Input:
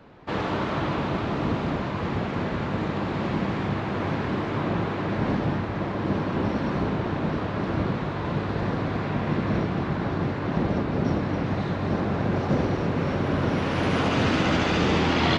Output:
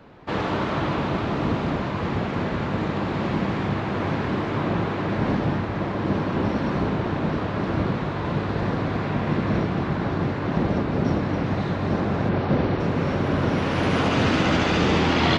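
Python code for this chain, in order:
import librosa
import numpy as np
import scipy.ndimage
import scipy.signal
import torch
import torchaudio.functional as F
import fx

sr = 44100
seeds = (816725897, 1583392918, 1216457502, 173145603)

y = fx.lowpass(x, sr, hz=4700.0, slope=24, at=(12.29, 12.8))
y = y * librosa.db_to_amplitude(2.0)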